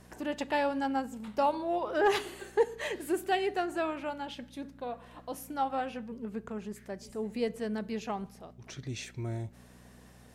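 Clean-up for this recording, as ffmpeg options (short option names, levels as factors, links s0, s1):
-af "bandreject=f=60.8:t=h:w=4,bandreject=f=121.6:t=h:w=4,bandreject=f=182.4:t=h:w=4,bandreject=f=243.2:t=h:w=4"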